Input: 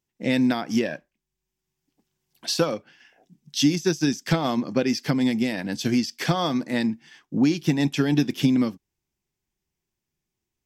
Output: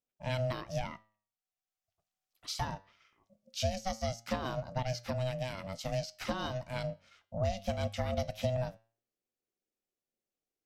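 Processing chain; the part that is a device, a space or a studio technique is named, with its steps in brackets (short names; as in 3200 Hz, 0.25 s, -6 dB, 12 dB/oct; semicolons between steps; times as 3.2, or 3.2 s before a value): 0.92–2.65 HPF 250 Hz 24 dB/oct; alien voice (ring modulator 380 Hz; flange 0.21 Hz, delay 8 ms, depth 2.8 ms, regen +87%); gain -5 dB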